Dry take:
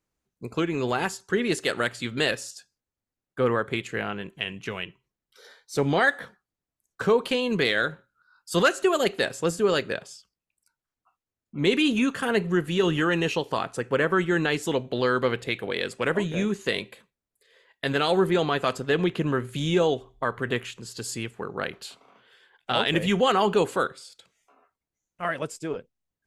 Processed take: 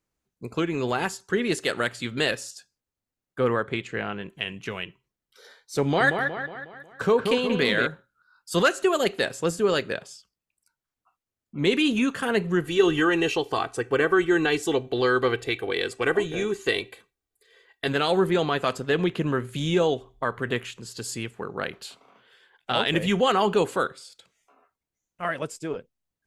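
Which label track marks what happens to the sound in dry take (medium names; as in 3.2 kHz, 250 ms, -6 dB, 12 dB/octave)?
3.630000	4.300000	distance through air 61 m
5.820000	7.870000	feedback echo behind a low-pass 182 ms, feedback 50%, low-pass 2.9 kHz, level -5.5 dB
12.640000	17.880000	comb 2.6 ms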